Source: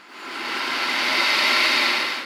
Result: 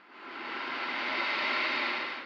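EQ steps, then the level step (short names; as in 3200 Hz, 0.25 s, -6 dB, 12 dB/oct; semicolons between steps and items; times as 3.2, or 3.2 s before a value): air absorption 290 m; low shelf 92 Hz -8 dB; -7.5 dB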